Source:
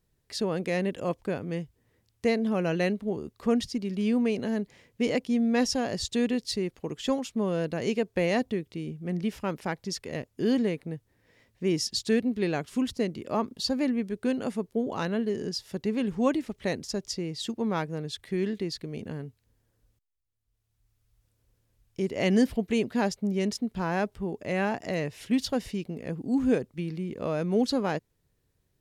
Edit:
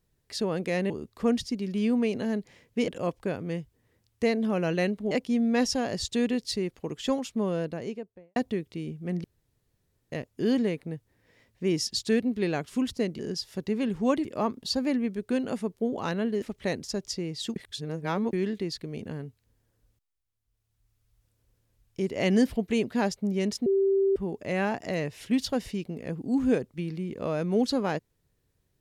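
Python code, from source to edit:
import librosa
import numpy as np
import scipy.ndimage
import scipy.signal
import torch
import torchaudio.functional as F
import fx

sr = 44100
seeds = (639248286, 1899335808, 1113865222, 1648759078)

y = fx.studio_fade_out(x, sr, start_s=7.38, length_s=0.98)
y = fx.edit(y, sr, fx.move(start_s=3.13, length_s=1.98, to_s=0.9),
    fx.room_tone_fill(start_s=9.24, length_s=0.88),
    fx.move(start_s=15.36, length_s=1.06, to_s=13.19),
    fx.reverse_span(start_s=17.56, length_s=0.77),
    fx.bleep(start_s=23.66, length_s=0.5, hz=390.0, db=-20.0), tone=tone)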